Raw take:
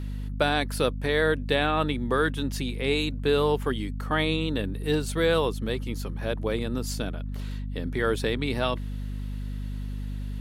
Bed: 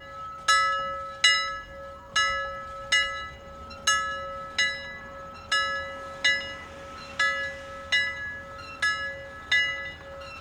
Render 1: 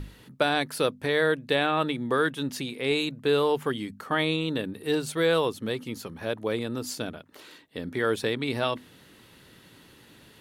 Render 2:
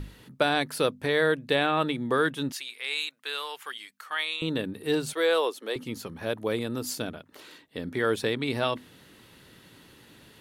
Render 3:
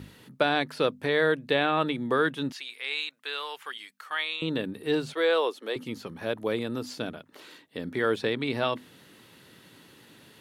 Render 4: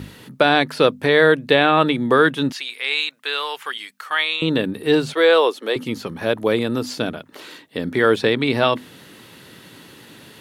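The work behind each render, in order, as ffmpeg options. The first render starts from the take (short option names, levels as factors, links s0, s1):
-af "bandreject=f=50:t=h:w=6,bandreject=f=100:t=h:w=6,bandreject=f=150:t=h:w=6,bandreject=f=200:t=h:w=6,bandreject=f=250:t=h:w=6"
-filter_complex "[0:a]asettb=1/sr,asplit=3[s0][s1][s2];[s0]atrim=end=2.524[s3];[s1]atrim=start=2.52:end=4.42,asetpts=PTS-STARTPTS,afade=t=in:d=0.004:c=qsin,afade=t=out:st=1.896:d=0.004:c=qsin,highpass=1400[s4];[s2]atrim=start=4.416[s5];[s3][s4]acrossfade=d=0.004:c1=hsin:c2=qsin[s6];[s6][s5]acrossfade=d=0.004:c1=qsin:c2=hsin,asettb=1/sr,asplit=3[s7][s8][s9];[s7]atrim=end=5.134[s10];[s8]atrim=start=5.13:end=5.76,asetpts=PTS-STARTPTS,afade=t=in:d=0.004:c=qsin,afade=t=out:st=0.626:d=0.004:c=qsin,highpass=f=360:w=0.5412,highpass=f=360:w=1.3066[s11];[s9]atrim=start=5.756[s12];[s10][s11]acrossfade=d=0.004:c1=hsin:c2=qsin[s13];[s13][s12]acrossfade=d=0.004:c1=qsin:c2=hsin,asettb=1/sr,asplit=3[s14][s15][s16];[s14]atrim=end=6.264[s17];[s15]atrim=start=6.26:end=7.02,asetpts=PTS-STARTPTS,afade=t=in:d=0.004:c=qsin,afade=t=out:st=0.756:d=0.004:c=qsin,equalizer=f=13000:t=o:w=0.77:g=5.5[s18];[s16]atrim=start=7.016[s19];[s17][s18]acrossfade=d=0.004:c1=hsin:c2=qsin[s20];[s20][s19]acrossfade=d=0.004:c1=qsin:c2=hsin"
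-filter_complex "[0:a]highpass=110,acrossover=split=5100[s0][s1];[s1]acompressor=threshold=0.00178:ratio=4:attack=1:release=60[s2];[s0][s2]amix=inputs=2:normalize=0"
-af "volume=3.16,alimiter=limit=0.891:level=0:latency=1"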